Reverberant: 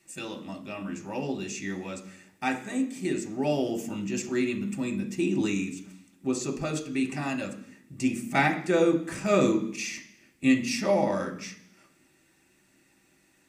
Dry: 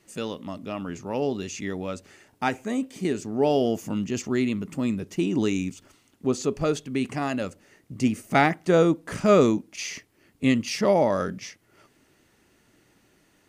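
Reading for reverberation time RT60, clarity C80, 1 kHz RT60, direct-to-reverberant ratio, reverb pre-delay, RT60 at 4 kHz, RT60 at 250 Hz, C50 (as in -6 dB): 0.65 s, 14.5 dB, 0.65 s, 0.5 dB, 3 ms, 0.80 s, 0.90 s, 11.0 dB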